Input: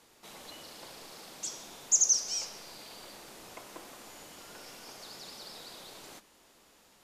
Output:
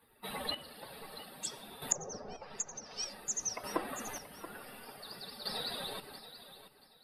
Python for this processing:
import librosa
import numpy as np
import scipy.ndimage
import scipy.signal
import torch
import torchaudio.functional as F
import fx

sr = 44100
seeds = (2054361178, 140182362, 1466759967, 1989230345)

p1 = fx.bin_expand(x, sr, power=2.0)
p2 = fx.chopper(p1, sr, hz=0.55, depth_pct=65, duty_pct=30)
p3 = p2 + fx.echo_feedback(p2, sr, ms=680, feedback_pct=26, wet_db=-13.5, dry=0)
p4 = fx.env_lowpass_down(p3, sr, base_hz=750.0, full_db=-34.0)
y = p4 * librosa.db_to_amplitude(16.0)